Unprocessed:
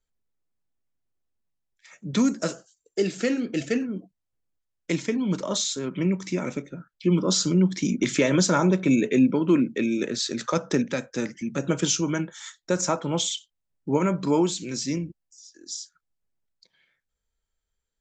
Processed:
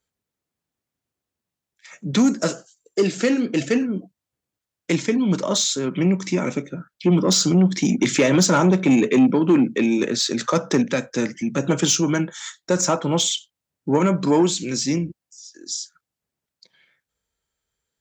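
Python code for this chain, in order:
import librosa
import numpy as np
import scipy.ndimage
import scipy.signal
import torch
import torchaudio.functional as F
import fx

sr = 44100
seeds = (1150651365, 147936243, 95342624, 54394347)

y = 10.0 ** (-15.5 / 20.0) * np.tanh(x / 10.0 ** (-15.5 / 20.0))
y = scipy.signal.sosfilt(scipy.signal.butter(2, 83.0, 'highpass', fs=sr, output='sos'), y)
y = y * librosa.db_to_amplitude(6.5)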